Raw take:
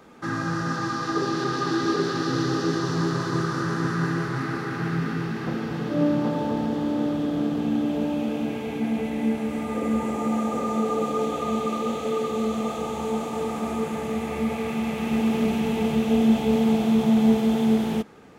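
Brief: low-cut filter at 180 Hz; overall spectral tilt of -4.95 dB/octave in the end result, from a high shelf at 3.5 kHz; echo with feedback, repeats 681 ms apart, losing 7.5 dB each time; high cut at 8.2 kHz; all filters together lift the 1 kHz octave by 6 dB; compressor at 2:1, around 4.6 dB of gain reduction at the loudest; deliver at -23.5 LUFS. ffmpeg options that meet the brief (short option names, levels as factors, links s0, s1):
-af "highpass=180,lowpass=8200,equalizer=f=1000:t=o:g=7,highshelf=f=3500:g=8,acompressor=threshold=0.0631:ratio=2,aecho=1:1:681|1362|2043|2724|3405:0.422|0.177|0.0744|0.0312|0.0131,volume=1.26"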